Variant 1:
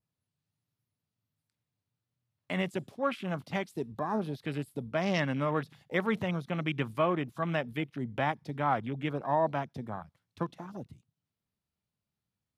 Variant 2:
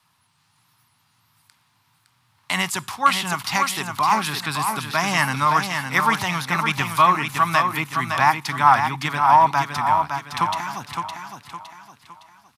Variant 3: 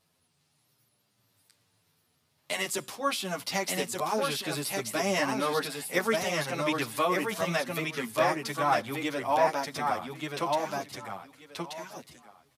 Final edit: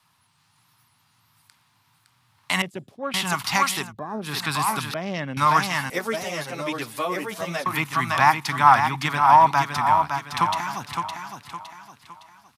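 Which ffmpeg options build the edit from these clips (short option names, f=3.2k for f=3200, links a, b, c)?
-filter_complex "[0:a]asplit=3[a][b][c];[1:a]asplit=5[d][e][f][g][h];[d]atrim=end=2.622[i];[a]atrim=start=2.618:end=3.142[j];[e]atrim=start=3.138:end=3.93[k];[b]atrim=start=3.77:end=4.38[l];[f]atrim=start=4.22:end=4.942[m];[c]atrim=start=4.938:end=5.372[n];[g]atrim=start=5.368:end=5.902[o];[2:a]atrim=start=5.898:end=7.662[p];[h]atrim=start=7.658[q];[i][j]acrossfade=d=0.004:c1=hsin:c2=hsin[r];[r][k]acrossfade=d=0.004:c1=hsin:c2=hsin[s];[s][l]acrossfade=d=0.16:c1=tri:c2=tri[t];[t][m]acrossfade=d=0.16:c1=tri:c2=tri[u];[u][n]acrossfade=d=0.004:c1=hsin:c2=hsin[v];[v][o]acrossfade=d=0.004:c1=hsin:c2=hsin[w];[w][p]acrossfade=d=0.004:c1=hsin:c2=hsin[x];[x][q]acrossfade=d=0.004:c1=hsin:c2=hsin"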